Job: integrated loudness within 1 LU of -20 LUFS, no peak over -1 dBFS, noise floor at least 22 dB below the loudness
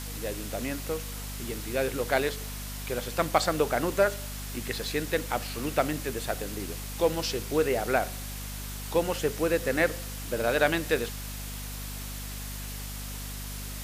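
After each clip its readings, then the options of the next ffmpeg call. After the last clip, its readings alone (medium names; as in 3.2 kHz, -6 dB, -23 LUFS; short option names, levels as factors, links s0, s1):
hum 50 Hz; highest harmonic 250 Hz; hum level -36 dBFS; noise floor -37 dBFS; noise floor target -52 dBFS; loudness -30.0 LUFS; peak level -8.5 dBFS; loudness target -20.0 LUFS
-> -af "bandreject=f=50:t=h:w=6,bandreject=f=100:t=h:w=6,bandreject=f=150:t=h:w=6,bandreject=f=200:t=h:w=6,bandreject=f=250:t=h:w=6"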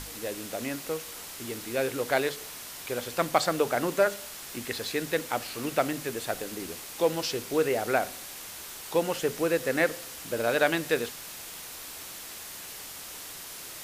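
hum not found; noise floor -42 dBFS; noise floor target -53 dBFS
-> -af "afftdn=nr=11:nf=-42"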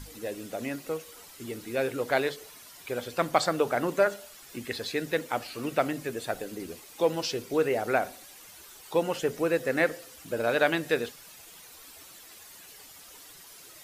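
noise floor -50 dBFS; noise floor target -52 dBFS
-> -af "afftdn=nr=6:nf=-50"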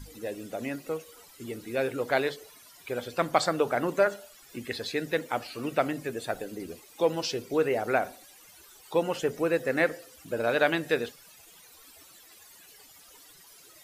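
noise floor -54 dBFS; loudness -29.5 LUFS; peak level -8.5 dBFS; loudness target -20.0 LUFS
-> -af "volume=2.99,alimiter=limit=0.891:level=0:latency=1"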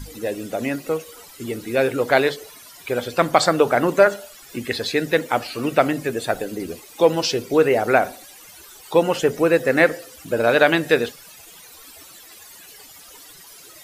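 loudness -20.0 LUFS; peak level -1.0 dBFS; noise floor -45 dBFS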